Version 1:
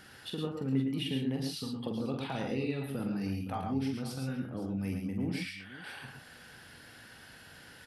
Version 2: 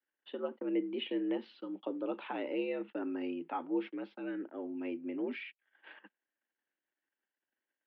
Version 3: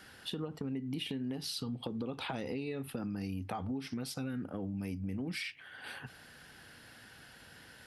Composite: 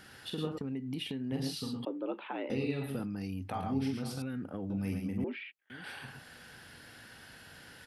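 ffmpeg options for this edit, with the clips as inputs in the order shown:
ffmpeg -i take0.wav -i take1.wav -i take2.wav -filter_complex "[2:a]asplit=3[link_01][link_02][link_03];[1:a]asplit=2[link_04][link_05];[0:a]asplit=6[link_06][link_07][link_08][link_09][link_10][link_11];[link_06]atrim=end=0.582[link_12];[link_01]atrim=start=0.578:end=1.322[link_13];[link_07]atrim=start=1.318:end=1.852[link_14];[link_04]atrim=start=1.848:end=2.502[link_15];[link_08]atrim=start=2.498:end=3.07[link_16];[link_02]atrim=start=2.97:end=3.58[link_17];[link_09]atrim=start=3.48:end=4.222[link_18];[link_03]atrim=start=4.218:end=4.702[link_19];[link_10]atrim=start=4.698:end=5.242[link_20];[link_05]atrim=start=5.238:end=5.702[link_21];[link_11]atrim=start=5.698[link_22];[link_12][link_13]acrossfade=duration=0.004:curve1=hsin:curve2=hsin[link_23];[link_23][link_14]acrossfade=duration=0.004:curve1=hsin:curve2=hsin[link_24];[link_24][link_15]acrossfade=duration=0.004:curve1=hsin:curve2=hsin[link_25];[link_25][link_16]acrossfade=duration=0.004:curve1=hsin:curve2=hsin[link_26];[link_26][link_17]acrossfade=duration=0.1:curve1=tri:curve2=tri[link_27];[link_27][link_18]acrossfade=duration=0.1:curve1=tri:curve2=tri[link_28];[link_28][link_19]acrossfade=duration=0.004:curve1=hsin:curve2=hsin[link_29];[link_29][link_20]acrossfade=duration=0.004:curve1=hsin:curve2=hsin[link_30];[link_30][link_21]acrossfade=duration=0.004:curve1=hsin:curve2=hsin[link_31];[link_31][link_22]acrossfade=duration=0.004:curve1=hsin:curve2=hsin" out.wav

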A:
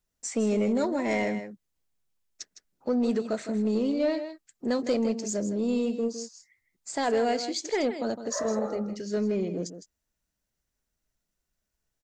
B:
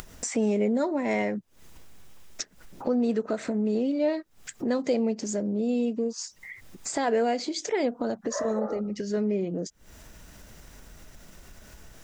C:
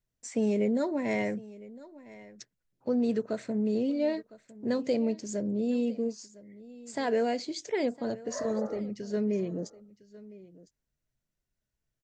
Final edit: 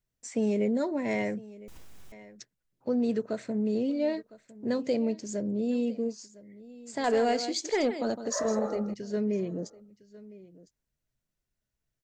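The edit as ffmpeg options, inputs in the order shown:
ffmpeg -i take0.wav -i take1.wav -i take2.wav -filter_complex "[2:a]asplit=3[link_01][link_02][link_03];[link_01]atrim=end=1.682[link_04];[1:a]atrim=start=1.678:end=2.122[link_05];[link_02]atrim=start=2.118:end=7.042[link_06];[0:a]atrim=start=7.038:end=8.942[link_07];[link_03]atrim=start=8.938[link_08];[link_04][link_05]acrossfade=duration=0.004:curve1=hsin:curve2=hsin[link_09];[link_09][link_06]acrossfade=duration=0.004:curve1=hsin:curve2=hsin[link_10];[link_10][link_07]acrossfade=duration=0.004:curve1=hsin:curve2=hsin[link_11];[link_11][link_08]acrossfade=duration=0.004:curve1=hsin:curve2=hsin" out.wav

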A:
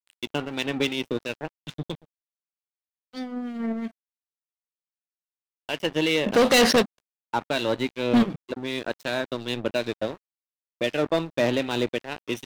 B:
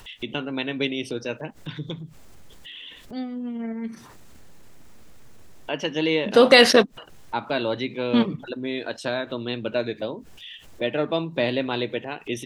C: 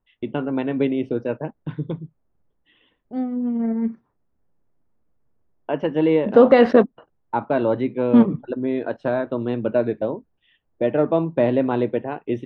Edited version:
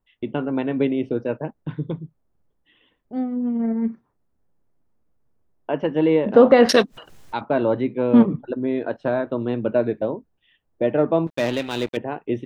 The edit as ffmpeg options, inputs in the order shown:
ffmpeg -i take0.wav -i take1.wav -i take2.wav -filter_complex "[2:a]asplit=3[link_01][link_02][link_03];[link_01]atrim=end=6.692[link_04];[1:a]atrim=start=6.688:end=7.412[link_05];[link_02]atrim=start=7.408:end=11.272[link_06];[0:a]atrim=start=11.268:end=11.972[link_07];[link_03]atrim=start=11.968[link_08];[link_04][link_05]acrossfade=duration=0.004:curve1=hsin:curve2=hsin[link_09];[link_09][link_06]acrossfade=duration=0.004:curve1=hsin:curve2=hsin[link_10];[link_10][link_07]acrossfade=duration=0.004:curve1=hsin:curve2=hsin[link_11];[link_11][link_08]acrossfade=duration=0.004:curve1=hsin:curve2=hsin" out.wav

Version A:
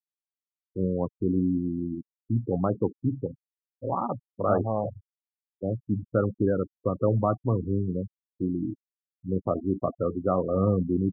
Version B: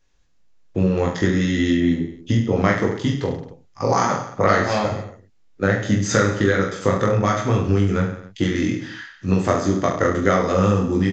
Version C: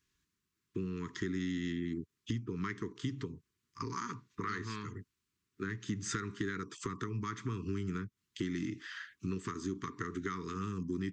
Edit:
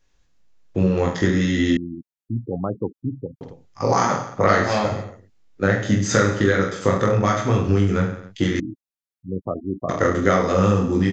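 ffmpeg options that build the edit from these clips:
ffmpeg -i take0.wav -i take1.wav -filter_complex "[0:a]asplit=2[link_01][link_02];[1:a]asplit=3[link_03][link_04][link_05];[link_03]atrim=end=1.772[link_06];[link_01]atrim=start=1.768:end=3.412[link_07];[link_04]atrim=start=3.408:end=8.602[link_08];[link_02]atrim=start=8.598:end=9.892[link_09];[link_05]atrim=start=9.888[link_10];[link_06][link_07]acrossfade=duration=0.004:curve1=hsin:curve2=hsin[link_11];[link_11][link_08]acrossfade=duration=0.004:curve1=hsin:curve2=hsin[link_12];[link_12][link_09]acrossfade=duration=0.004:curve1=hsin:curve2=hsin[link_13];[link_13][link_10]acrossfade=duration=0.004:curve1=hsin:curve2=hsin" out.wav

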